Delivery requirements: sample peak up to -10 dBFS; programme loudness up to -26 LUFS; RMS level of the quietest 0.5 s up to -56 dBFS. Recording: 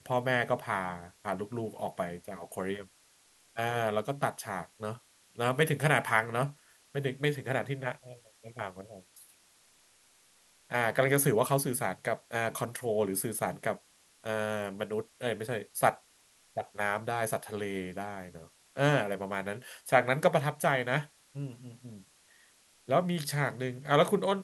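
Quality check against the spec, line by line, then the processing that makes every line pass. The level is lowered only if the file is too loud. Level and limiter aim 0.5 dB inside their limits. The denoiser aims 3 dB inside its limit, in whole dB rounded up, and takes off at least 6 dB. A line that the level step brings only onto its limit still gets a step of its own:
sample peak -10.5 dBFS: pass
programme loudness -31.5 LUFS: pass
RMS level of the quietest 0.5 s -64 dBFS: pass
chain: none needed

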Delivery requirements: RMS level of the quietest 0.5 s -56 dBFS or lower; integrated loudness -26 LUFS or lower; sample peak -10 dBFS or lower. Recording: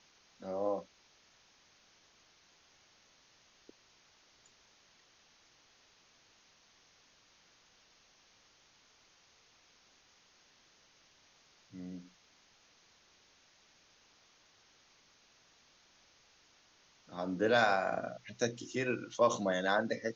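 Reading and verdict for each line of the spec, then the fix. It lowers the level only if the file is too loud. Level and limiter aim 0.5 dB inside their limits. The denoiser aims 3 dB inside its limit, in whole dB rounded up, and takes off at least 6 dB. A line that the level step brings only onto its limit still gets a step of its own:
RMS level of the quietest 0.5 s -67 dBFS: pass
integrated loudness -34.0 LUFS: pass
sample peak -16.0 dBFS: pass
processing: none needed

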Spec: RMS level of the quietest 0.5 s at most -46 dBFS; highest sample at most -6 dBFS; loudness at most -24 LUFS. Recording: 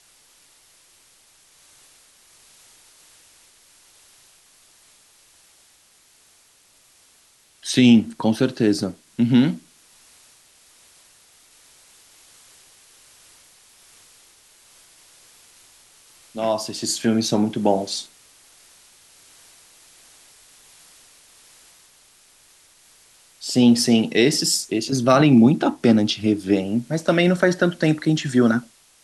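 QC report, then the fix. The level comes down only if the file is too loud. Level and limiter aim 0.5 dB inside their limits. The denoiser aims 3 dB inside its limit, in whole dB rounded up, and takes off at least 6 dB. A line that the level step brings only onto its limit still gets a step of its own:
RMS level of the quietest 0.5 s -57 dBFS: pass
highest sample -5.0 dBFS: fail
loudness -19.0 LUFS: fail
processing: trim -5.5 dB

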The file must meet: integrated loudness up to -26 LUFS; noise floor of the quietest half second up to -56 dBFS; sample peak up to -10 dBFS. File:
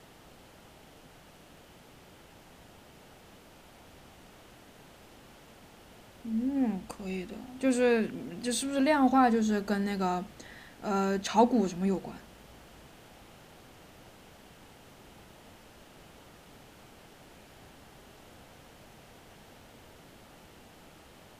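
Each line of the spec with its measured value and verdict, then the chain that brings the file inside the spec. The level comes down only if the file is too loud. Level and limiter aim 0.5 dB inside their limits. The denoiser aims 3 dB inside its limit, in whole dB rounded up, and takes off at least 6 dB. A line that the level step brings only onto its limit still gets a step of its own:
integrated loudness -29.0 LUFS: pass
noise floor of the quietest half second -55 dBFS: fail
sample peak -11.0 dBFS: pass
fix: noise reduction 6 dB, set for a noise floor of -55 dBFS

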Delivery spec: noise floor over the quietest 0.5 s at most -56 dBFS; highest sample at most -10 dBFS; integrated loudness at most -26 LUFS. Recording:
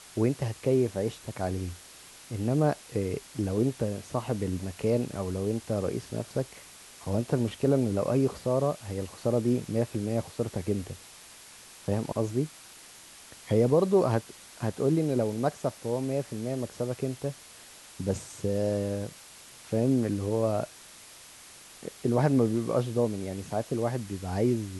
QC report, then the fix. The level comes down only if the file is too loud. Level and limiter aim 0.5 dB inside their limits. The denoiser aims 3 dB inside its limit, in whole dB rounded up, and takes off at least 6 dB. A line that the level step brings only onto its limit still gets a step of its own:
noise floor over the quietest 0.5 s -50 dBFS: fail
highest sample -11.0 dBFS: pass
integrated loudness -29.5 LUFS: pass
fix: noise reduction 9 dB, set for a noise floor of -50 dBFS

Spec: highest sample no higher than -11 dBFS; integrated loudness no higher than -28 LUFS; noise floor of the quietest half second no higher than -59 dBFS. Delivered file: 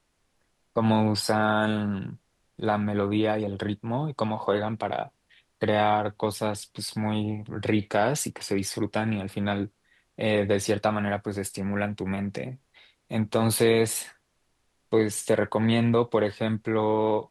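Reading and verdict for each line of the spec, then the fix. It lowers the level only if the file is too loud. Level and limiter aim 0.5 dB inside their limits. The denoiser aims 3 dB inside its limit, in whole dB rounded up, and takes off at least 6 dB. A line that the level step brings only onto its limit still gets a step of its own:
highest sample -10.0 dBFS: fail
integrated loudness -26.5 LUFS: fail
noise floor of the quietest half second -71 dBFS: pass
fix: trim -2 dB

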